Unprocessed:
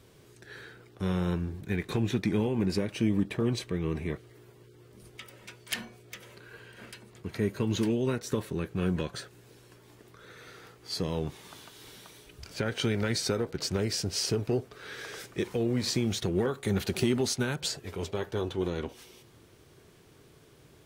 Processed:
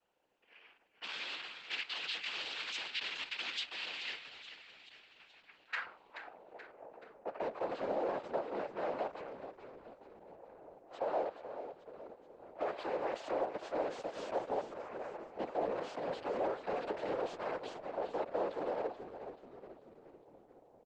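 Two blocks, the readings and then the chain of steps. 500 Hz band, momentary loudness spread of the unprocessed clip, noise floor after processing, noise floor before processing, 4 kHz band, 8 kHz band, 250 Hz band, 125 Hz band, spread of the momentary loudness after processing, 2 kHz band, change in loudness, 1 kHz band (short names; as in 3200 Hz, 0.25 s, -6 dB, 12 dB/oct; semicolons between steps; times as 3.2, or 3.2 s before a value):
-4.5 dB, 20 LU, -66 dBFS, -57 dBFS, -6.0 dB, under -20 dB, -17.5 dB, -28.5 dB, 18 LU, -3.5 dB, -8.5 dB, +3.0 dB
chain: block floating point 3-bit; low-pass opened by the level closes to 410 Hz, open at -26.5 dBFS; three-band isolator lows -20 dB, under 400 Hz, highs -21 dB, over 4400 Hz; in parallel at +1 dB: limiter -30 dBFS, peak gain reduction 10 dB; on the sum: ring modulator 88 Hz; noise vocoder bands 8; soft clip -32 dBFS, distortion -12 dB; band-pass sweep 3200 Hz -> 620 Hz, 5.23–6.44; on a send: frequency-shifting echo 0.429 s, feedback 51%, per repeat -40 Hz, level -10.5 dB; on the sum: gain +8 dB; Opus 12 kbps 48000 Hz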